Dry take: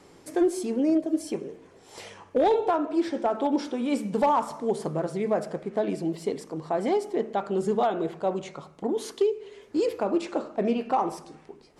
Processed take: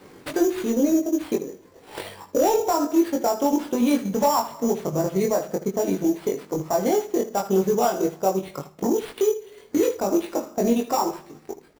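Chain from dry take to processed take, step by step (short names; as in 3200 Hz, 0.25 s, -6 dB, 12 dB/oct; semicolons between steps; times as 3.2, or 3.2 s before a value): bin magnitudes rounded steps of 15 dB; sample-rate reducer 6400 Hz, jitter 0%; transient shaper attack +7 dB, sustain -6 dB; limiter -18.5 dBFS, peak gain reduction 10.5 dB; on a send: early reflections 21 ms -3 dB, 78 ms -13.5 dB; on the sum: gain +4 dB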